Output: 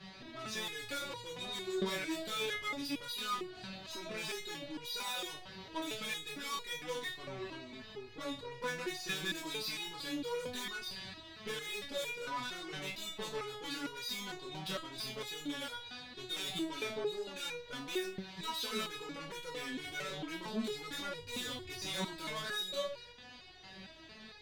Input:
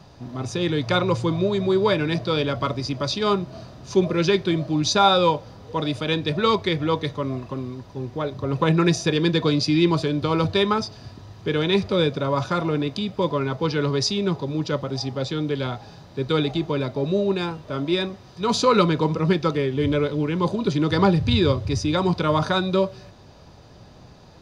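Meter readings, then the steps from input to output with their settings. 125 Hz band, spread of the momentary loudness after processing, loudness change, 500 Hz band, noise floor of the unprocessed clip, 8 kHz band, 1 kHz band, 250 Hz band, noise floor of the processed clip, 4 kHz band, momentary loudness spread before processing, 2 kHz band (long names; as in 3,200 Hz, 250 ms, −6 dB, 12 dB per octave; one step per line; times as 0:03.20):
−28.0 dB, 9 LU, −17.0 dB, −20.0 dB, −47 dBFS, −9.0 dB, −18.5 dB, −21.5 dB, −53 dBFS, −11.0 dB, 10 LU, −10.0 dB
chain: flat-topped bell 2,600 Hz +12.5 dB
downward compressor 2 to 1, threshold −25 dBFS, peak gain reduction 10 dB
chorus effect 0.38 Hz, delay 20 ms, depth 6.4 ms
tube saturation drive 34 dB, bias 0.4
step-sequenced resonator 4.4 Hz 190–480 Hz
level +11 dB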